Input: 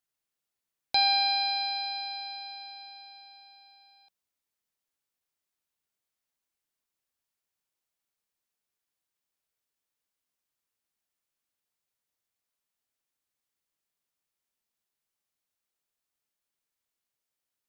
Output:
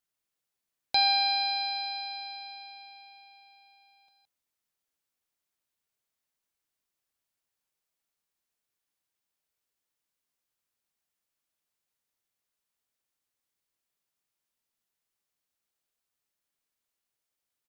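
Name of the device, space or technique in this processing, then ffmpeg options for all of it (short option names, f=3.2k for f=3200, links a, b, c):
ducked delay: -filter_complex "[0:a]asplit=3[a][b][c];[b]adelay=168,volume=-7.5dB[d];[c]apad=whole_len=787444[e];[d][e]sidechaincompress=threshold=-43dB:ratio=8:attack=16:release=390[f];[a][f]amix=inputs=2:normalize=0"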